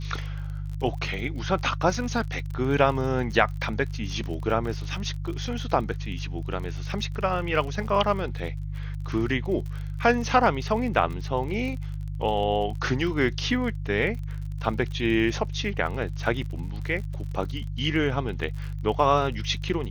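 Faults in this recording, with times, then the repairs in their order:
surface crackle 43 per second −34 dBFS
mains hum 50 Hz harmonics 3 −32 dBFS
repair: click removal
hum removal 50 Hz, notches 3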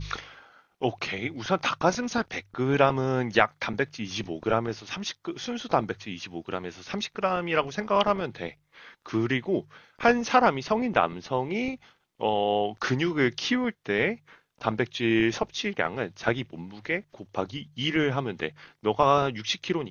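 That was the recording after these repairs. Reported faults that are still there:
none of them is left

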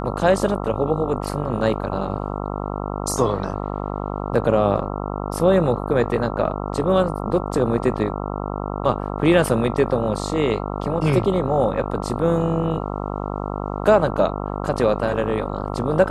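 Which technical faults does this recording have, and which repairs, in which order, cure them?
mains buzz 50 Hz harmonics 27 −27 dBFS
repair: hum removal 50 Hz, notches 27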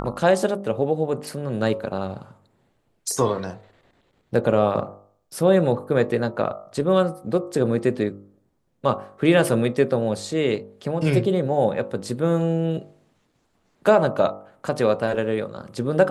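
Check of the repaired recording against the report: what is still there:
none of them is left

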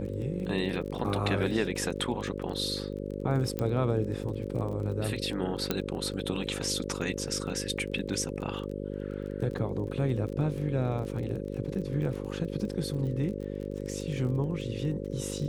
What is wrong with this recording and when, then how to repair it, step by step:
mains buzz 50 Hz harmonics 11 −36 dBFS
surface crackle 27 per second −37 dBFS
0:03.59: click −17 dBFS
0:05.71: click −12 dBFS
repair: click removal
hum removal 50 Hz, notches 11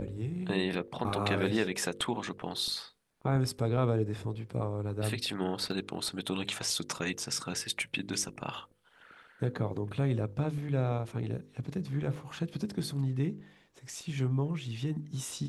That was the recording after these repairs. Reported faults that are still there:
0:05.71: click

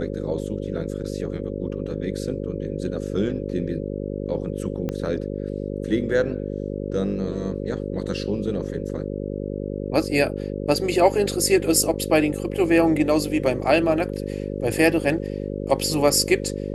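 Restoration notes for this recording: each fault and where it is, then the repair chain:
mains buzz 50 Hz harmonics 11 −29 dBFS
0:04.89: click −15 dBFS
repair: click removal
hum removal 50 Hz, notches 11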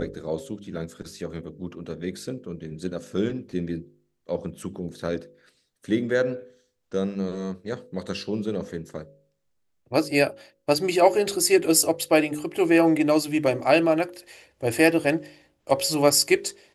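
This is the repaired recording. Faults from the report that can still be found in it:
0:04.89: click

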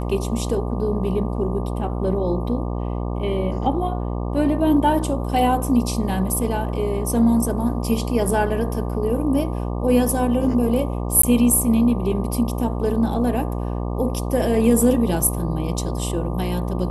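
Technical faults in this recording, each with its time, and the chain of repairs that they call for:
mains buzz 60 Hz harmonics 20 −25 dBFS
0:11.22–0:11.23: drop-out 14 ms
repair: hum removal 60 Hz, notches 20
repair the gap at 0:11.22, 14 ms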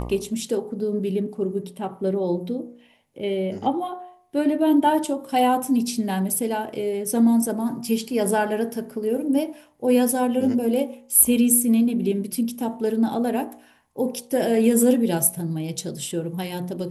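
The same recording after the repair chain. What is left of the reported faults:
none of them is left

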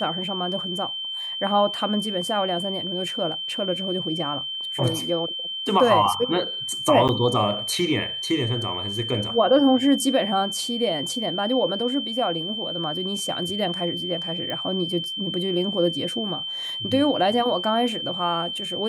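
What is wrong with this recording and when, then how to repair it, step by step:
whistle 3,100 Hz −28 dBFS
0:07.08–0:07.09: drop-out 8.5 ms
0:14.50: click −17 dBFS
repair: click removal
notch filter 3,100 Hz, Q 30
repair the gap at 0:07.08, 8.5 ms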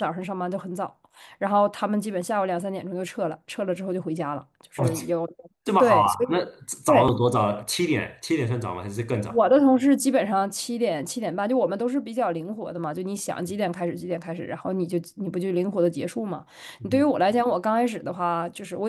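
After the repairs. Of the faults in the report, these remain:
none of them is left

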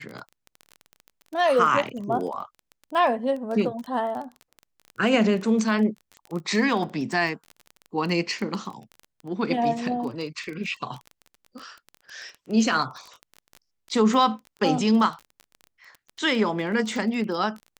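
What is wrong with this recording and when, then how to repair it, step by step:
surface crackle 21 per second −31 dBFS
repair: click removal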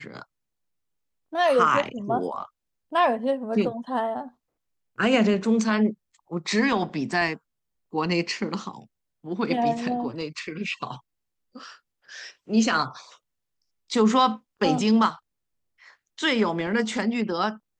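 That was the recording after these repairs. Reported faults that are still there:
none of them is left

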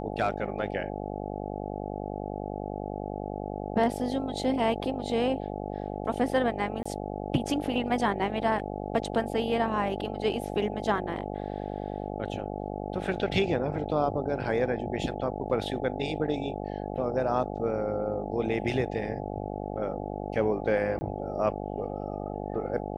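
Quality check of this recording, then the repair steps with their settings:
mains buzz 50 Hz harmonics 17 −35 dBFS
0:06.83–0:06.86: drop-out 25 ms
0:20.99–0:21.01: drop-out 20 ms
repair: hum removal 50 Hz, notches 17
repair the gap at 0:06.83, 25 ms
repair the gap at 0:20.99, 20 ms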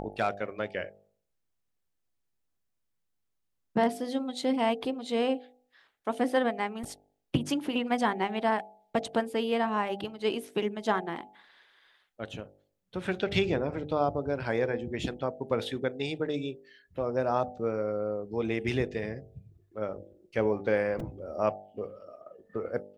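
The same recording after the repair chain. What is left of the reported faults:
none of them is left

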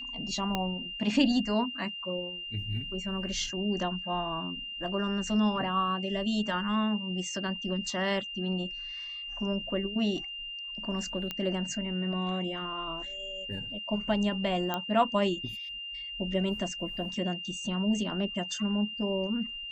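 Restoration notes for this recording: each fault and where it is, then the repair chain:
whistle 2,800 Hz −37 dBFS
0:00.55: click −15 dBFS
0:11.31: click −19 dBFS
0:14.74: click −16 dBFS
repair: click removal
notch filter 2,800 Hz, Q 30

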